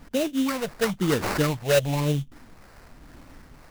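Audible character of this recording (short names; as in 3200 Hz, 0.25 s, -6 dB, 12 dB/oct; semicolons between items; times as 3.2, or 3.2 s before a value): phasing stages 6, 1 Hz, lowest notch 280–1200 Hz; aliases and images of a low sample rate 3300 Hz, jitter 20%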